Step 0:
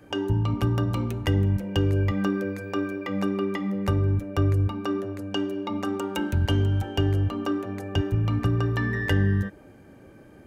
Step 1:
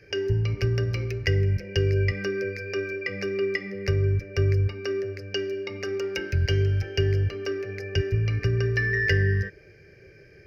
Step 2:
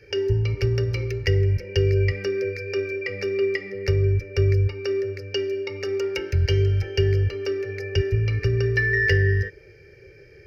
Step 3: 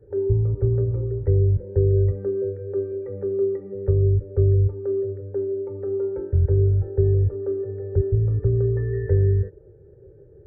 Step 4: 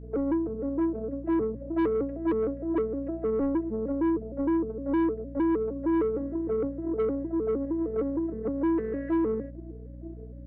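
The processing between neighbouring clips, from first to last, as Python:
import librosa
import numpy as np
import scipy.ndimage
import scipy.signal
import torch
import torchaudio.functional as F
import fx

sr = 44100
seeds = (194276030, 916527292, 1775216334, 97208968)

y1 = fx.curve_eq(x, sr, hz=(150.0, 260.0, 400.0, 1000.0, 1700.0, 2400.0, 3500.0, 5100.0, 8000.0, 12000.0), db=(0, -21, 5, -21, 6, 10, -10, 15, -17, -10))
y2 = y1 + 0.71 * np.pad(y1, (int(2.2 * sr / 1000.0), 0))[:len(y1)]
y3 = scipy.ndimage.gaussian_filter1d(y2, 10.0, mode='constant')
y3 = F.gain(torch.from_numpy(y3), 2.0).numpy()
y4 = fx.vocoder_arp(y3, sr, chord='major triad', root=57, every_ms=154)
y4 = 10.0 ** (-22.0 / 20.0) * np.tanh(y4 / 10.0 ** (-22.0 / 20.0))
y4 = fx.add_hum(y4, sr, base_hz=60, snr_db=14)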